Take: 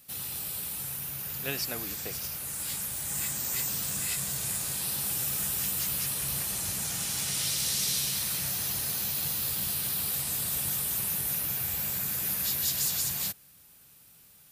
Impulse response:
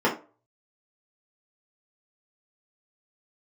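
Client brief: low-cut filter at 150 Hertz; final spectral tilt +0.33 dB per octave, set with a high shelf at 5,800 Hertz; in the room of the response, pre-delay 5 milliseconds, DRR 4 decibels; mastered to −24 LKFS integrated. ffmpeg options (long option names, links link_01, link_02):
-filter_complex "[0:a]highpass=150,highshelf=frequency=5800:gain=5,asplit=2[link_01][link_02];[1:a]atrim=start_sample=2205,adelay=5[link_03];[link_02][link_03]afir=irnorm=-1:irlink=0,volume=-20dB[link_04];[link_01][link_04]amix=inputs=2:normalize=0,volume=0.5dB"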